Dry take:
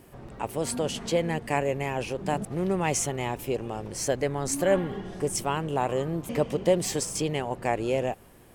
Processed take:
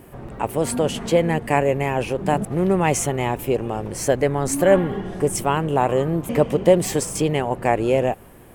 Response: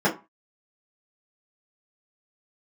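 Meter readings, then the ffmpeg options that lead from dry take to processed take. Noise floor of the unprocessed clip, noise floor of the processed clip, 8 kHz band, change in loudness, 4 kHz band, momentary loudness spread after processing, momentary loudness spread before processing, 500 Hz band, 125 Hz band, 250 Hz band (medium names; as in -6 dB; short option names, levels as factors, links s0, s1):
-53 dBFS, -45 dBFS, +3.5 dB, +7.5 dB, +3.0 dB, 7 LU, 7 LU, +8.0 dB, +8.0 dB, +8.0 dB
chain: -af "equalizer=f=5100:t=o:w=1.4:g=-7.5,volume=2.51"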